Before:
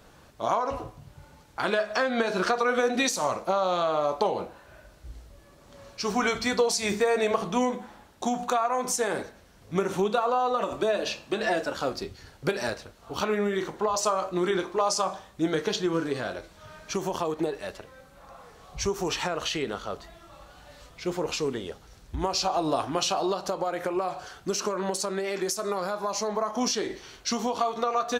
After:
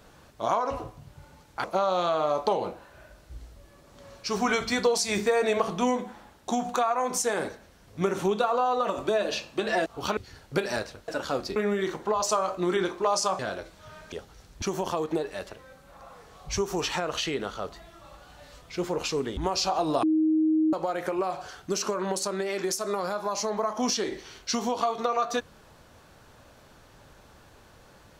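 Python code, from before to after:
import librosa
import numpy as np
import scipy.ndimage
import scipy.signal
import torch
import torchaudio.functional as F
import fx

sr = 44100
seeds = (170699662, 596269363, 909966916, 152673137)

y = fx.edit(x, sr, fx.cut(start_s=1.64, length_s=1.74),
    fx.swap(start_s=11.6, length_s=0.48, other_s=12.99, other_length_s=0.31),
    fx.cut(start_s=15.13, length_s=1.04),
    fx.move(start_s=21.65, length_s=0.5, to_s=16.9),
    fx.bleep(start_s=22.81, length_s=0.7, hz=314.0, db=-19.5), tone=tone)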